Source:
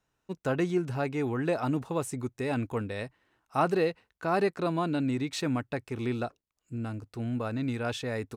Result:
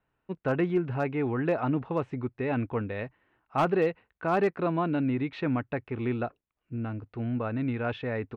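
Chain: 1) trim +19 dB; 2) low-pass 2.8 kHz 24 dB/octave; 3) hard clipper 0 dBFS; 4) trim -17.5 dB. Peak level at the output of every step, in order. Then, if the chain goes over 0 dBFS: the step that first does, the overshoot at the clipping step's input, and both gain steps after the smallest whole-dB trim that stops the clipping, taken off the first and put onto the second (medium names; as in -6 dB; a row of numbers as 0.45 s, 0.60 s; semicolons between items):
+6.0 dBFS, +6.0 dBFS, 0.0 dBFS, -17.5 dBFS; step 1, 6.0 dB; step 1 +13 dB, step 4 -11.5 dB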